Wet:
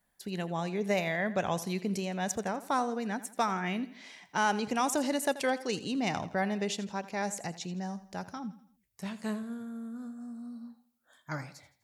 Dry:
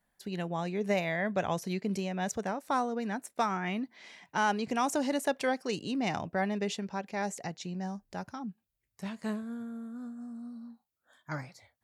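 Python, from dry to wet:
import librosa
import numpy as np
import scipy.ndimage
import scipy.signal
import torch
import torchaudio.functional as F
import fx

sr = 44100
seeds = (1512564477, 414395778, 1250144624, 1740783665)

p1 = fx.high_shelf(x, sr, hz=5100.0, db=5.5)
y = p1 + fx.echo_feedback(p1, sr, ms=83, feedback_pct=43, wet_db=-16, dry=0)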